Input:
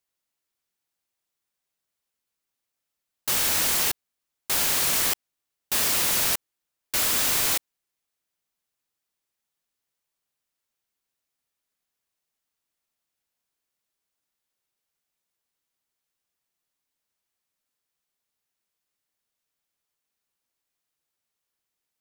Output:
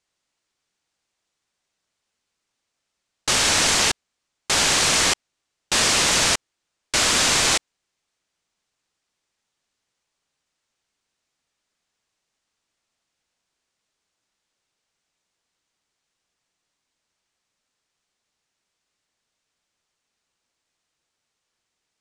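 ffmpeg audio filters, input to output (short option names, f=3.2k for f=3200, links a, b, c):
-af "lowpass=f=8k:w=0.5412,lowpass=f=8k:w=1.3066,volume=8.5dB"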